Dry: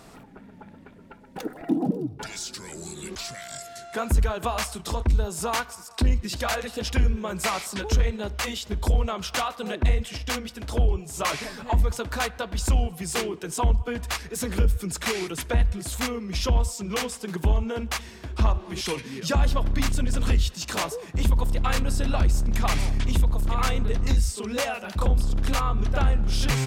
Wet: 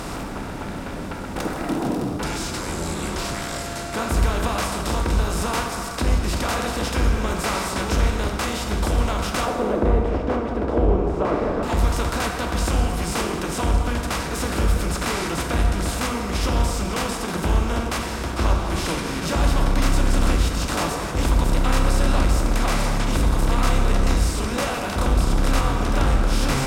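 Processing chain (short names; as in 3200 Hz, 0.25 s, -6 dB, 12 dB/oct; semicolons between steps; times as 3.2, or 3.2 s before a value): per-bin compression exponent 0.4; 9.45–11.63 EQ curve 170 Hz 0 dB, 440 Hz +9 dB, 11000 Hz -27 dB; plate-style reverb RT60 1.9 s, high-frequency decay 0.65×, DRR 3 dB; gain -5.5 dB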